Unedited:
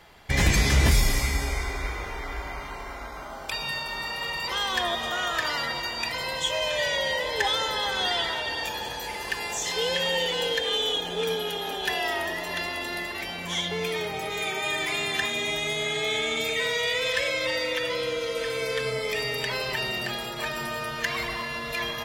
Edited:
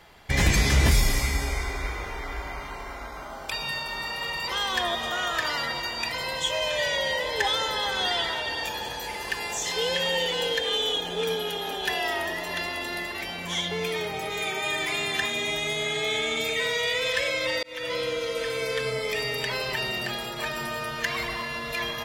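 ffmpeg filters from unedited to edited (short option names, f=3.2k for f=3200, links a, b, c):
-filter_complex "[0:a]asplit=2[a][b];[a]atrim=end=17.63,asetpts=PTS-STARTPTS,afade=t=out:st=17.626:d=0.004:c=hsin[c];[b]atrim=start=17.63,asetpts=PTS-STARTPTS,afade=t=in:d=0.32[d];[c][d]concat=n=2:v=0:a=1"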